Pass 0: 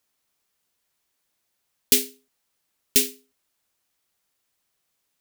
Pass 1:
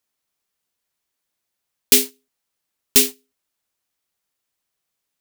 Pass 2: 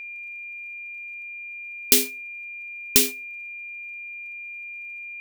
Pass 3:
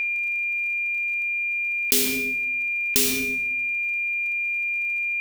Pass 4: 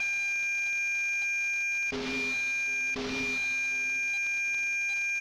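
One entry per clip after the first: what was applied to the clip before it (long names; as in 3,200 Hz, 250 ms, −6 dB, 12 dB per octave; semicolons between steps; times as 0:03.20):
leveller curve on the samples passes 2
downward compressor 2.5 to 1, threshold −14 dBFS, peak gain reduction 4.5 dB; steady tone 2,400 Hz −34 dBFS; surface crackle 43 per second −51 dBFS
tuned comb filter 97 Hz, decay 0.55 s, harmonics odd, mix 50%; rectangular room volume 130 cubic metres, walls mixed, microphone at 0.3 metres; envelope flattener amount 70%
variable-slope delta modulation 32 kbit/s; in parallel at −7 dB: soft clipping −35.5 dBFS, distortion −9 dB; on the sum: repeating echo 752 ms, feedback 35%, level −20 dB; level −6 dB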